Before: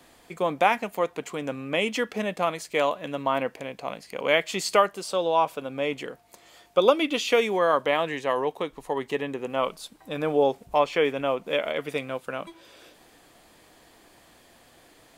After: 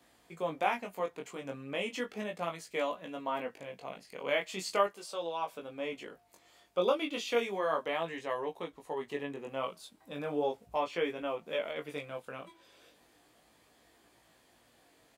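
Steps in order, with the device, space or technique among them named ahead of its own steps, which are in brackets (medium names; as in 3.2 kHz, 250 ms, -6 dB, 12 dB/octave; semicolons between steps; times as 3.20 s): high-pass 48 Hz; 4.87–5.52 s: bass shelf 220 Hz -11.5 dB; double-tracked vocal (doubling 17 ms -12.5 dB; chorus 0.36 Hz, delay 17.5 ms, depth 4.7 ms); trim -7 dB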